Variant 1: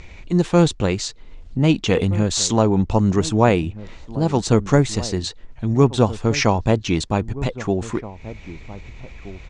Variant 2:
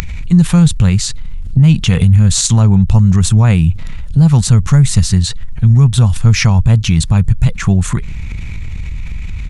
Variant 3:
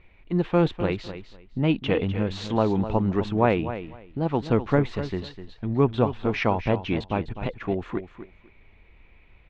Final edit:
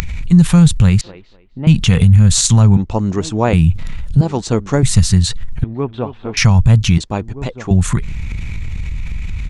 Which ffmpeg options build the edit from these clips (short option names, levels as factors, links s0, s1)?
-filter_complex "[2:a]asplit=2[s0][s1];[0:a]asplit=3[s2][s3][s4];[1:a]asplit=6[s5][s6][s7][s8][s9][s10];[s5]atrim=end=1.012[s11];[s0]atrim=start=1.008:end=1.672[s12];[s6]atrim=start=1.668:end=2.772[s13];[s2]atrim=start=2.768:end=3.532[s14];[s7]atrim=start=3.528:end=4.212[s15];[s3]atrim=start=4.208:end=4.832[s16];[s8]atrim=start=4.828:end=5.642[s17];[s1]atrim=start=5.638:end=6.372[s18];[s9]atrim=start=6.368:end=6.982[s19];[s4]atrim=start=6.978:end=7.712[s20];[s10]atrim=start=7.708[s21];[s11][s12]acrossfade=d=0.004:c1=hsin:c2=hsin[s22];[s22][s13]acrossfade=d=0.004:c1=hsin:c2=hsin[s23];[s23][s14]acrossfade=d=0.004:c1=hsin:c2=hsin[s24];[s24][s15]acrossfade=d=0.004:c1=hsin:c2=hsin[s25];[s25][s16]acrossfade=d=0.004:c1=hsin:c2=hsin[s26];[s26][s17]acrossfade=d=0.004:c1=hsin:c2=hsin[s27];[s27][s18]acrossfade=d=0.004:c1=hsin:c2=hsin[s28];[s28][s19]acrossfade=d=0.004:c1=hsin:c2=hsin[s29];[s29][s20]acrossfade=d=0.004:c1=hsin:c2=hsin[s30];[s30][s21]acrossfade=d=0.004:c1=hsin:c2=hsin"